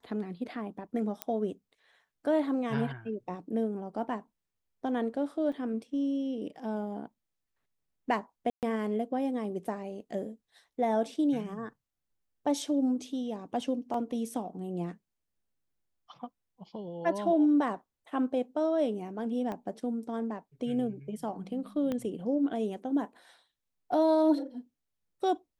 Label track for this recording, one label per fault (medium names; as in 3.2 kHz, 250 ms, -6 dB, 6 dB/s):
1.220000	1.220000	pop -15 dBFS
5.520000	5.520000	dropout 3.9 ms
8.500000	8.630000	dropout 128 ms
13.940000	13.940000	dropout 2.8 ms
19.520000	19.520000	pop -25 dBFS
21.920000	21.920000	pop -21 dBFS